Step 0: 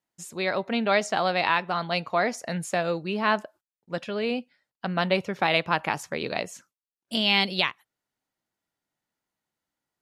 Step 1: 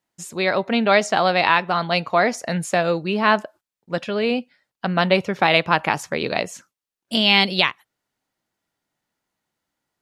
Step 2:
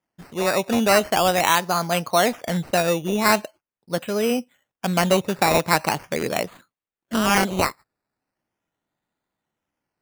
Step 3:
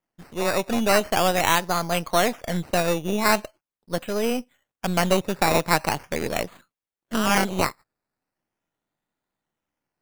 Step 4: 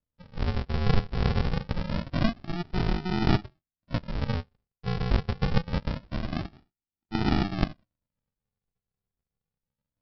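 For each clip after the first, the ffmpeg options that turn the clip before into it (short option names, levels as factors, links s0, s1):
-af "highshelf=f=9800:g=-3.5,volume=2.11"
-af "aemphasis=mode=reproduction:type=75kf,acrusher=samples=11:mix=1:aa=0.000001:lfo=1:lforange=6.6:lforate=0.41"
-af "aeval=exprs='if(lt(val(0),0),0.447*val(0),val(0))':c=same"
-af "flanger=delay=7.8:depth=4.4:regen=-57:speed=0.36:shape=sinusoidal,aresample=11025,acrusher=samples=28:mix=1:aa=0.000001:lfo=1:lforange=16.8:lforate=0.25,aresample=44100,volume=1.12"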